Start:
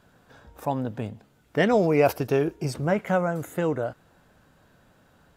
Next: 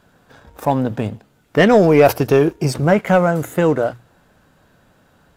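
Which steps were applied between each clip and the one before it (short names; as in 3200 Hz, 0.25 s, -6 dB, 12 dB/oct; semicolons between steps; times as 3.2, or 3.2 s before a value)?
notches 60/120 Hz; sample leveller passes 1; gain +6.5 dB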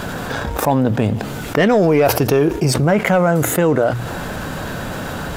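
fast leveller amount 70%; gain -4 dB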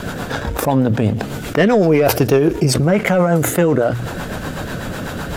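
rotary speaker horn 8 Hz; gain +2.5 dB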